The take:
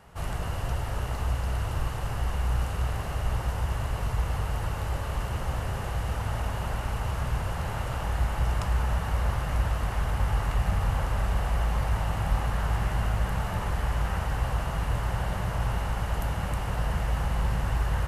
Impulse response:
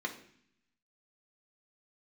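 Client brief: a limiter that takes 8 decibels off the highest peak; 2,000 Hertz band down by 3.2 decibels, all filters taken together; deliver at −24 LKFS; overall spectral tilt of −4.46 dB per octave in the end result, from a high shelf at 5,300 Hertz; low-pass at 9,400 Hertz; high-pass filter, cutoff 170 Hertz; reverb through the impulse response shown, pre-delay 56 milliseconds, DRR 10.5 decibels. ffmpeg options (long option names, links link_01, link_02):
-filter_complex "[0:a]highpass=170,lowpass=9400,equalizer=frequency=2000:width_type=o:gain=-5,highshelf=frequency=5300:gain=5.5,alimiter=level_in=3.5dB:limit=-24dB:level=0:latency=1,volume=-3.5dB,asplit=2[link_01][link_02];[1:a]atrim=start_sample=2205,adelay=56[link_03];[link_02][link_03]afir=irnorm=-1:irlink=0,volume=-14dB[link_04];[link_01][link_04]amix=inputs=2:normalize=0,volume=13dB"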